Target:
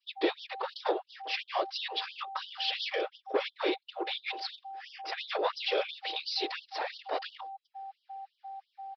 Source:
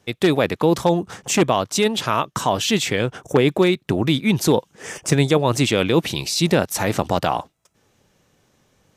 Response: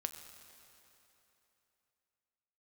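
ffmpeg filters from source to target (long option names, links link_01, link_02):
-af "adynamicequalizer=threshold=0.02:dfrequency=1700:dqfactor=0.73:tfrequency=1700:tqfactor=0.73:attack=5:release=100:ratio=0.375:range=1.5:mode=cutabove:tftype=bell,aresample=11025,asoftclip=type=tanh:threshold=-12.5dB,aresample=44100,afftfilt=real='hypot(re,im)*cos(2*PI*random(0))':imag='hypot(re,im)*sin(2*PI*random(1))':win_size=512:overlap=0.75,aeval=exprs='val(0)+0.0112*sin(2*PI*780*n/s)':channel_layout=same,afftfilt=real='re*gte(b*sr/1024,300*pow(3000/300,0.5+0.5*sin(2*PI*2.9*pts/sr)))':imag='im*gte(b*sr/1024,300*pow(3000/300,0.5+0.5*sin(2*PI*2.9*pts/sr)))':win_size=1024:overlap=0.75"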